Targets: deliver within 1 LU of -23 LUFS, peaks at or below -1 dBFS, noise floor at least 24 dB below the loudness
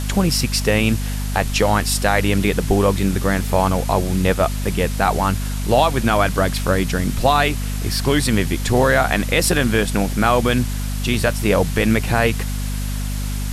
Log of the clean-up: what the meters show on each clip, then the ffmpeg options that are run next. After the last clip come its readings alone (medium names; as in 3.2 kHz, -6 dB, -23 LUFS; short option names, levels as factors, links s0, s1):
hum 50 Hz; highest harmonic 250 Hz; hum level -21 dBFS; noise floor -23 dBFS; noise floor target -43 dBFS; loudness -18.5 LUFS; peak level -3.0 dBFS; loudness target -23.0 LUFS
-> -af "bandreject=f=50:t=h:w=4,bandreject=f=100:t=h:w=4,bandreject=f=150:t=h:w=4,bandreject=f=200:t=h:w=4,bandreject=f=250:t=h:w=4"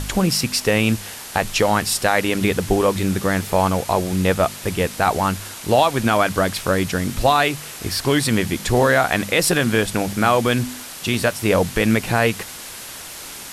hum not found; noise floor -35 dBFS; noise floor target -44 dBFS
-> -af "afftdn=nr=9:nf=-35"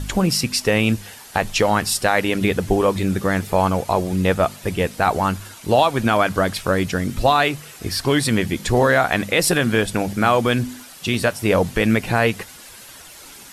noise floor -42 dBFS; noise floor target -44 dBFS
-> -af "afftdn=nr=6:nf=-42"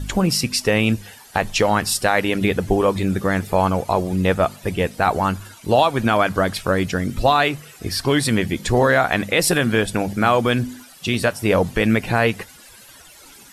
noise floor -45 dBFS; loudness -19.5 LUFS; peak level -4.0 dBFS; loudness target -23.0 LUFS
-> -af "volume=0.668"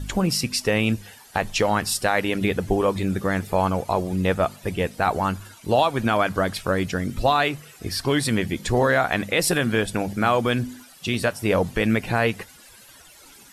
loudness -23.0 LUFS; peak level -7.5 dBFS; noise floor -49 dBFS